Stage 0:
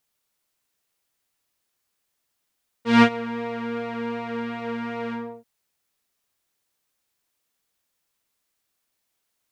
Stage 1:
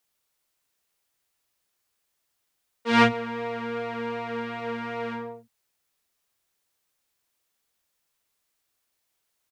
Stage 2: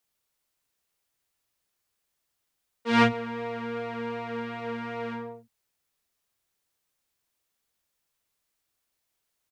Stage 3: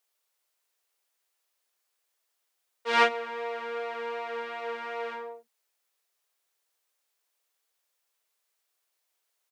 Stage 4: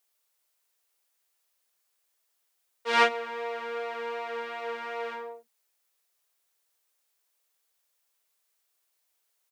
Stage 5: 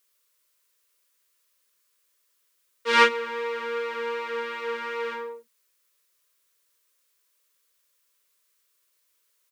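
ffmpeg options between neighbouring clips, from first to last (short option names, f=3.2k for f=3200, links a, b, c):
-filter_complex "[0:a]acrossover=split=220[a][b];[a]adelay=40[c];[c][b]amix=inputs=2:normalize=0"
-af "lowshelf=f=240:g=4,volume=-3dB"
-af "highpass=f=400:w=0.5412,highpass=f=400:w=1.3066,volume=1dB"
-af "highshelf=f=7k:g=4.5"
-af "asuperstop=centerf=760:order=8:qfactor=2.5,volume=5dB"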